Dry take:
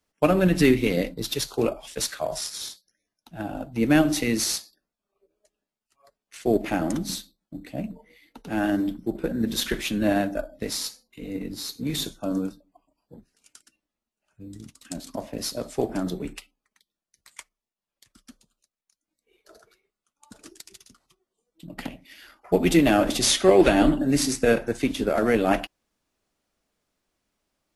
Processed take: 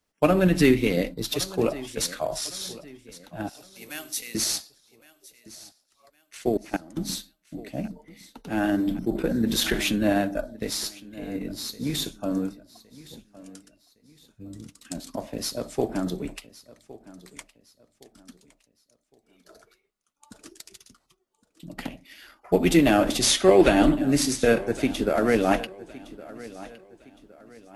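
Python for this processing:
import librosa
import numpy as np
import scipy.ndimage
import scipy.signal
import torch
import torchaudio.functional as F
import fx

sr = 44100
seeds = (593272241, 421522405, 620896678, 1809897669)

p1 = fx.differentiator(x, sr, at=(3.49, 4.35))
p2 = fx.level_steps(p1, sr, step_db=23, at=(6.49, 6.97))
p3 = p2 + fx.echo_feedback(p2, sr, ms=1113, feedback_pct=36, wet_db=-19.0, dry=0)
y = fx.env_flatten(p3, sr, amount_pct=50, at=(8.87, 9.96))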